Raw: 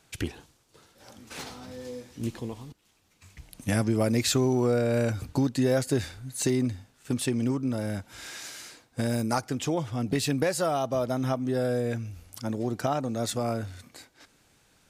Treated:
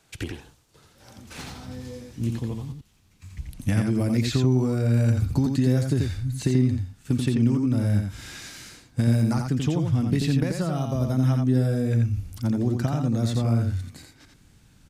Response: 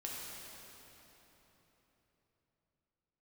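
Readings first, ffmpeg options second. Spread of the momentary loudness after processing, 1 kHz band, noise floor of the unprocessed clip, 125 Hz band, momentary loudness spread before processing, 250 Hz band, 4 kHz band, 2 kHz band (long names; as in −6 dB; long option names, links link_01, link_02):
17 LU, −4.5 dB, −65 dBFS, +9.5 dB, 16 LU, +4.5 dB, −2.0 dB, −1.5 dB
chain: -filter_complex "[0:a]acrossover=split=290|5000[link_01][link_02][link_03];[link_01]acompressor=threshold=-32dB:ratio=4[link_04];[link_02]acompressor=threshold=-29dB:ratio=4[link_05];[link_03]acompressor=threshold=-46dB:ratio=4[link_06];[link_04][link_05][link_06]amix=inputs=3:normalize=0,asubboost=boost=5:cutoff=230,aecho=1:1:86:0.596"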